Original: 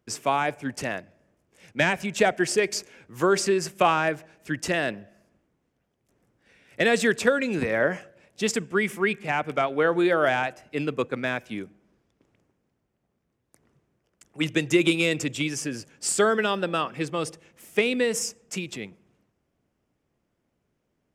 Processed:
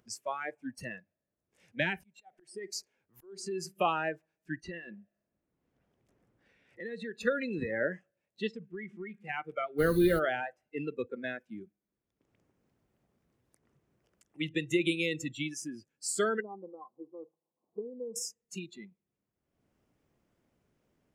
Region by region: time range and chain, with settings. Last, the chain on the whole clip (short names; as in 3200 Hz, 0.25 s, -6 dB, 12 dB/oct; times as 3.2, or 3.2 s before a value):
1.95–3.65 bell 800 Hz +4.5 dB 0.99 oct + compressor, threshold -22 dBFS + auto swell 0.374 s
4.61–7.21 LPF 3500 Hz 6 dB/oct + compressor 5:1, threshold -27 dBFS
8.47–9.14 compressor, threshold -27 dBFS + air absorption 130 m
9.78–10.18 bell 180 Hz +11.5 dB 1.7 oct + added noise pink -31 dBFS
16.4–18.16 rippled Chebyshev low-pass 1100 Hz, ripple 3 dB + tilt +4 dB/oct
whole clip: spectral noise reduction 20 dB; upward compressor, threshold -44 dBFS; gain -8 dB